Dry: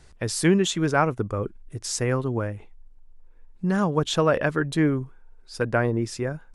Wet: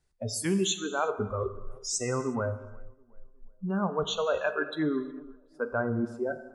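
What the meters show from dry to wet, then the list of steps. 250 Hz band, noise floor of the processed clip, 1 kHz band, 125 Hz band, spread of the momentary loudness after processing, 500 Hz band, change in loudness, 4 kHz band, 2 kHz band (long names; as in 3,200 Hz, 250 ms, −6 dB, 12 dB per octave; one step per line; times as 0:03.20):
−7.0 dB, −60 dBFS, −6.0 dB, −10.0 dB, 11 LU, −5.0 dB, −6.0 dB, −3.5 dB, −6.5 dB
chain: noise reduction from a noise print of the clip's start 30 dB
high-shelf EQ 9,600 Hz +9 dB
reversed playback
downward compressor 4 to 1, threshold −35 dBFS, peak gain reduction 17 dB
reversed playback
tape delay 365 ms, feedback 48%, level −23 dB, low-pass 1,200 Hz
reverb whose tail is shaped and stops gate 390 ms falling, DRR 9 dB
level +6.5 dB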